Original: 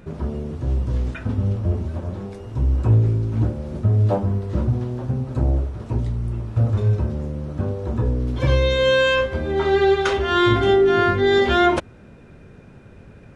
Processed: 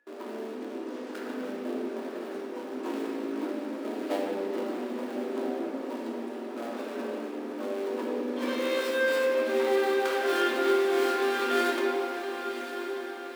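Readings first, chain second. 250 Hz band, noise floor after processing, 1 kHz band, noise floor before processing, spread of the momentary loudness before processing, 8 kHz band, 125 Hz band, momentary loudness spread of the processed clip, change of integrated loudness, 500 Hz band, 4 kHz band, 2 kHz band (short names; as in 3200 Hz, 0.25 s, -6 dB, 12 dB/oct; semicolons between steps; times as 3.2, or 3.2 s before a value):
-7.0 dB, -39 dBFS, -7.5 dB, -45 dBFS, 10 LU, n/a, under -40 dB, 12 LU, -9.5 dB, -7.0 dB, -9.5 dB, -7.0 dB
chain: switching dead time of 0.2 ms; gate with hold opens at -31 dBFS; steep high-pass 240 Hz 72 dB/oct; bell 1600 Hz +3 dB 1.7 oct; compressor 3:1, threshold -23 dBFS, peak gain reduction 8.5 dB; whine 1700 Hz -59 dBFS; diffused feedback echo 1.067 s, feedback 52%, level -9 dB; shoebox room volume 120 m³, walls hard, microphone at 0.59 m; gain -8.5 dB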